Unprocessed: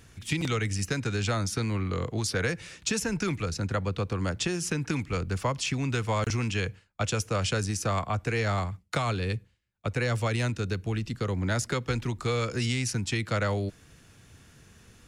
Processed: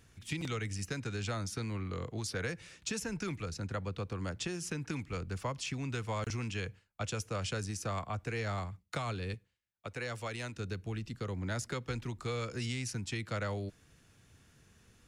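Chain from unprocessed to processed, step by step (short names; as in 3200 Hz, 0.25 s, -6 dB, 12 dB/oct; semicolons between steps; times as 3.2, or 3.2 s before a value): 9.34–10.56 low shelf 260 Hz -9 dB; gain -8.5 dB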